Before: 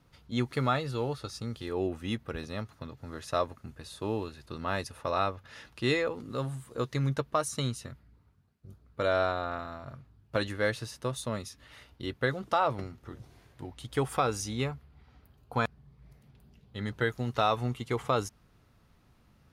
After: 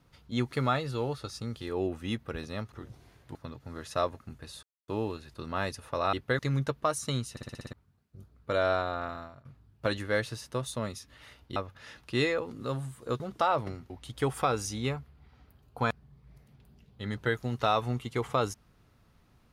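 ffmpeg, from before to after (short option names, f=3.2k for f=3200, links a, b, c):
-filter_complex "[0:a]asplit=17[a][b][c][d][e][f][g][h][i][j][k][l][m][n][o][p][q];[a]atrim=end=2.722[r];[b]atrim=start=13.018:end=13.652[s];[c]atrim=start=2.718:end=4,asetpts=PTS-STARTPTS,afade=t=out:st=1.278:d=0.004:c=hsin,apad=pad_dur=0.25[t];[d]atrim=start=4:end=5.252,asetpts=PTS-STARTPTS,afade=t=in:d=0.004:c=hsin[u];[e]atrim=start=12.058:end=12.322[v];[f]atrim=start=6.888:end=7.872[w];[g]atrim=start=7.808:end=7.872[x];[h]atrim=start=7.808:end=7.872[y];[i]atrim=start=7.808:end=7.872[z];[j]atrim=start=7.808:end=7.872[aa];[k]atrim=start=7.808:end=7.872[ab];[l]atrim=start=7.808:end=7.872[ac];[m]atrim=start=8.228:end=9.95,asetpts=PTS-STARTPTS,afade=t=out:st=1.452:d=0.27:silence=0.0749894[ad];[n]atrim=start=9.95:end=12.062,asetpts=PTS-STARTPTS,afade=t=in:d=0.004:c=hsin:silence=0.0749894[ae];[o]atrim=start=5.248:end=6.892[af];[p]atrim=start=12.318:end=13.022[ag];[q]atrim=start=13.648[ah];[r][s]acrossfade=d=0.004:c1=hsin:c2=hsin[ai];[t][u]concat=n=2:v=0:a=1[aj];[ai][aj]acrossfade=d=0.004:c1=hsin:c2=hsin[ak];[ak][v]acrossfade=d=0.004:c1=hsin:c2=hsin[al];[al][w]acrossfade=d=0.004:c1=hsin:c2=hsin[am];[am][x]acrossfade=d=0.004:c1=hsin:c2=hsin[an];[an][y]acrossfade=d=0.004:c1=hsin:c2=hsin[ao];[ao][z]acrossfade=d=0.004:c1=hsin:c2=hsin[ap];[ap][aa]acrossfade=d=0.004:c1=hsin:c2=hsin[aq];[aq][ab]acrossfade=d=0.004:c1=hsin:c2=hsin[ar];[ar][ac]acrossfade=d=0.004:c1=hsin:c2=hsin[as];[ad][ae]concat=n=2:v=0:a=1[at];[as][at]acrossfade=d=0.004:c1=hsin:c2=hsin[au];[au][af]acrossfade=d=0.004:c1=hsin:c2=hsin[av];[av][ag]acrossfade=d=0.004:c1=hsin:c2=hsin[aw];[aw][ah]acrossfade=d=0.004:c1=hsin:c2=hsin"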